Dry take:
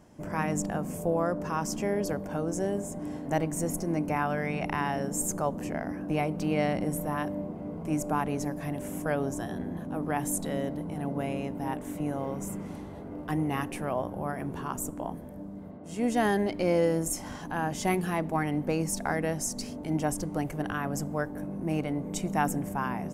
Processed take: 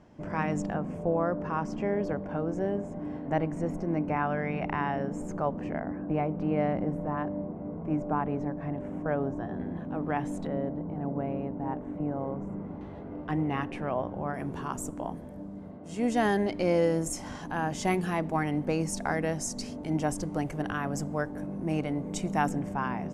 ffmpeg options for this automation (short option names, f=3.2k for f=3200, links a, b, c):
-af "asetnsamples=n=441:p=0,asendcmd='0.74 lowpass f 2400;5.8 lowpass f 1500;9.59 lowpass f 3000;10.47 lowpass f 1200;12.81 lowpass f 3300;14.34 lowpass f 8300;22.49 lowpass f 5000',lowpass=4.1k"